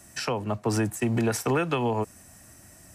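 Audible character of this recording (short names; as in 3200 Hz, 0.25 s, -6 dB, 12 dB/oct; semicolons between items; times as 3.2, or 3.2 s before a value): noise floor -52 dBFS; spectral tilt -5.5 dB/oct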